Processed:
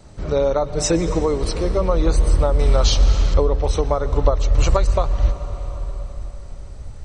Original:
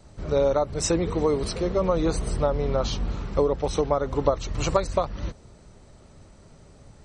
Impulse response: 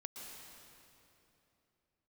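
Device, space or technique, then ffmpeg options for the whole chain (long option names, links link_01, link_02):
ducked reverb: -filter_complex "[0:a]asplit=3[link_01][link_02][link_03];[1:a]atrim=start_sample=2205[link_04];[link_02][link_04]afir=irnorm=-1:irlink=0[link_05];[link_03]apad=whole_len=310830[link_06];[link_05][link_06]sidechaincompress=threshold=-25dB:ratio=8:attack=16:release=1090,volume=2.5dB[link_07];[link_01][link_07]amix=inputs=2:normalize=0,asubboost=boost=6.5:cutoff=73,asettb=1/sr,asplit=3[link_08][link_09][link_10];[link_08]atrim=end=0.634[link_11];[link_09]atrim=start=0.63:end=1.19,asetpts=PTS-STARTPTS,afade=type=in:duration=0.004:curve=qsin,afade=type=out:start_time=0.556:duration=0.004:curve=qsin,aecho=1:1:6.4:0.58,atrim=end_sample=24696[link_12];[link_10]atrim=start=1.186[link_13];[link_11][link_12]acrossfade=duration=0.004:curve1=hsin:curve2=qsin[link_14];[link_14][link_13]acrossfade=duration=0.004:curve1=qsin:curve2=hsin,asettb=1/sr,asplit=3[link_15][link_16][link_17];[link_15]atrim=end=2.594[link_18];[link_16]atrim=start=2.59:end=3.34,asetpts=PTS-STARTPTS,afade=type=in:duration=0.004:curve=qsin,afade=type=out:start_time=0.746:duration=0.004:curve=qsin,highshelf=frequency=2500:gain=11.5[link_19];[link_17]atrim=start=3.336[link_20];[link_18][link_19]acrossfade=duration=0.004:curve1=hsin:curve2=qsin[link_21];[link_21][link_20]acrossfade=duration=0.004:curve1=qsin:curve2=hsin,volume=1dB"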